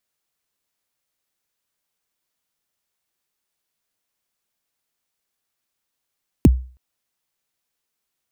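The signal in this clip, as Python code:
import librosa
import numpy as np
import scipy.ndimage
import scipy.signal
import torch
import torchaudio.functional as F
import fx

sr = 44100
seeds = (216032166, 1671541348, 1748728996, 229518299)

y = fx.drum_kick(sr, seeds[0], length_s=0.32, level_db=-4.0, start_hz=370.0, end_hz=63.0, sweep_ms=29.0, decay_s=0.39, click=True)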